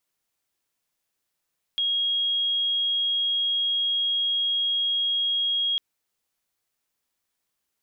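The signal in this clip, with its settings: tone sine 3.28 kHz -21.5 dBFS 4.00 s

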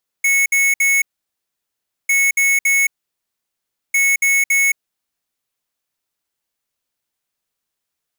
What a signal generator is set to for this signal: beep pattern square 2.2 kHz, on 0.22 s, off 0.06 s, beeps 3, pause 1.07 s, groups 3, -14.5 dBFS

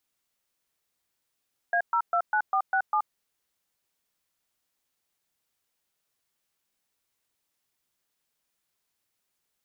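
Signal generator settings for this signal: DTMF "A029467", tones 77 ms, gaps 123 ms, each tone -24 dBFS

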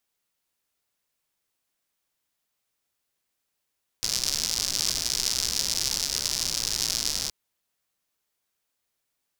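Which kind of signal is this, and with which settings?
rain from filtered ticks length 3.27 s, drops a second 140, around 5.2 kHz, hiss -12 dB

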